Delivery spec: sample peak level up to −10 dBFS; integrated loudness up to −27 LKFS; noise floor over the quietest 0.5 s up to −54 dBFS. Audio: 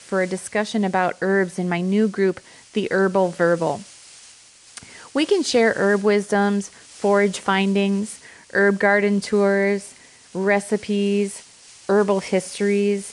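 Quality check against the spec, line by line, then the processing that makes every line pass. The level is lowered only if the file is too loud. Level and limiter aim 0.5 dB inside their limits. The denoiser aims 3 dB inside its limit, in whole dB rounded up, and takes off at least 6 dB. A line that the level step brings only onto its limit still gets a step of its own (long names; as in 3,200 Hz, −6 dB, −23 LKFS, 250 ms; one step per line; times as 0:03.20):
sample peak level −5.0 dBFS: out of spec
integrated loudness −20.5 LKFS: out of spec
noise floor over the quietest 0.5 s −48 dBFS: out of spec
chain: level −7 dB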